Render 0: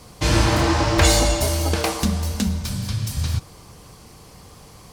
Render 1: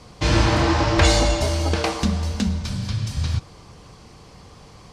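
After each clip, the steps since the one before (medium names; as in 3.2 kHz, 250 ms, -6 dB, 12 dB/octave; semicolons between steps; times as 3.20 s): low-pass 5.8 kHz 12 dB/octave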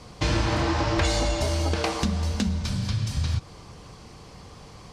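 compression 3:1, threshold -22 dBFS, peak gain reduction 8.5 dB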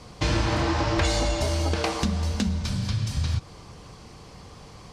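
no audible change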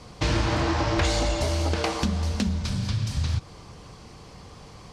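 loudspeaker Doppler distortion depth 0.22 ms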